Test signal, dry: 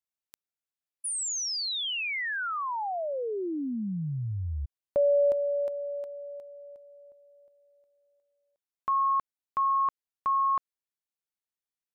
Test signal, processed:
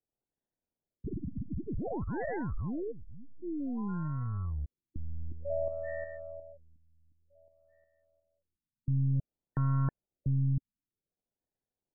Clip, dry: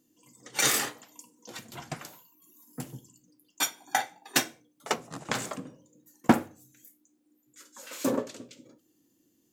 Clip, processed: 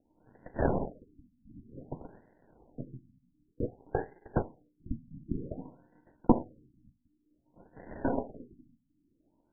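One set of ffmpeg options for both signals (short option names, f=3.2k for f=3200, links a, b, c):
-af "aeval=exprs='if(lt(val(0),0),0.447*val(0),val(0))':c=same,acrusher=samples=36:mix=1:aa=0.000001,afftfilt=real='re*lt(b*sr/1024,280*pow(2100/280,0.5+0.5*sin(2*PI*0.54*pts/sr)))':imag='im*lt(b*sr/1024,280*pow(2100/280,0.5+0.5*sin(2*PI*0.54*pts/sr)))':win_size=1024:overlap=0.75"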